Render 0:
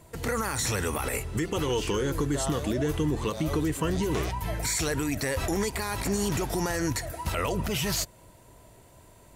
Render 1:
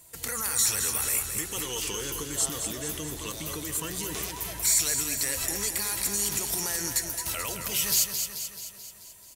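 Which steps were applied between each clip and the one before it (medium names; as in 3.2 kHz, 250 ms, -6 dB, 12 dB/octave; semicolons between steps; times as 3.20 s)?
pre-emphasis filter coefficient 0.9; on a send: feedback delay 217 ms, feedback 58%, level -7 dB; on the sum: trim +7.5 dB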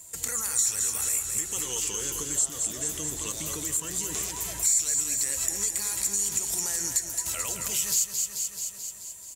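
peaking EQ 7.3 kHz +14 dB 0.45 oct; compression 2:1, threshold -29 dBFS, peak gain reduction 11.5 dB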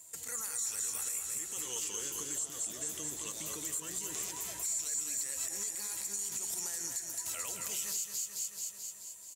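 high-pass 210 Hz 6 dB/octave; peak limiter -19 dBFS, peak gain reduction 10 dB; delay 236 ms -11 dB; trim -7 dB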